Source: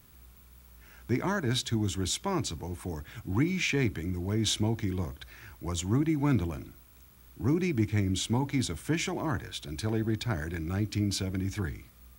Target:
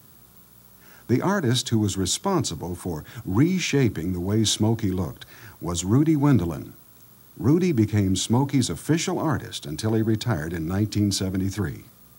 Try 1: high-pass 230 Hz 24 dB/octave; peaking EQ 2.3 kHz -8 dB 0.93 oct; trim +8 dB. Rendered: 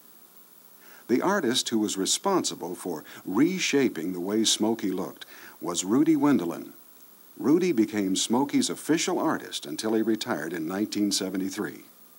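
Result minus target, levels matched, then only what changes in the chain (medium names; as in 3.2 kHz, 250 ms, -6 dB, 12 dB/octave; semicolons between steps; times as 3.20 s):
125 Hz band -13.5 dB
change: high-pass 99 Hz 24 dB/octave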